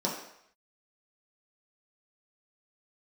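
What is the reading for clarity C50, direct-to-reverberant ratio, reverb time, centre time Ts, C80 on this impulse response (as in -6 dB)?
5.0 dB, -4.5 dB, 0.70 s, 38 ms, 7.5 dB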